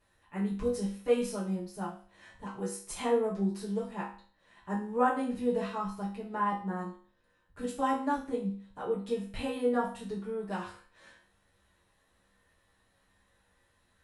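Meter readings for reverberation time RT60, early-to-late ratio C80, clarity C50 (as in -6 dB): 0.45 s, 11.0 dB, 6.0 dB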